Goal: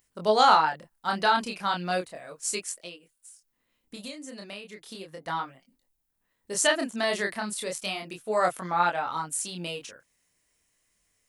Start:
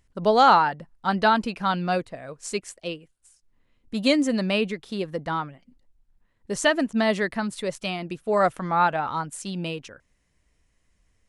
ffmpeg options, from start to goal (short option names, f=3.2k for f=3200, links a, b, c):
-filter_complex "[0:a]aemphasis=mode=production:type=bsi,asettb=1/sr,asplit=3[a][b][c];[a]atrim=end=2.794[d];[b]atrim=start=2.79:end=5.26,asetpts=PTS-STARTPTS,afade=t=in:d=0.004:c=qsin,afade=t=out:st=2.466:d=0.004:c=qsin,acompressor=threshold=-34dB:ratio=12[e];[c]atrim=start=5.256[f];[d][e]acrossfade=d=0.004:c1=hsin:c2=qsin[g];[g][f]acrossfade=d=0.004:c1=qsin:c2=hsin,flanger=delay=22.5:depth=7.5:speed=0.35"